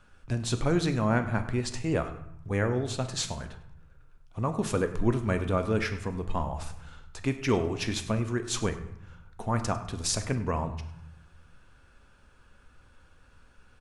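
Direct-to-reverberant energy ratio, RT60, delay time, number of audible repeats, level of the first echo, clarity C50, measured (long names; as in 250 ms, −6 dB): 7.5 dB, 0.75 s, 101 ms, 1, −16.5 dB, 11.0 dB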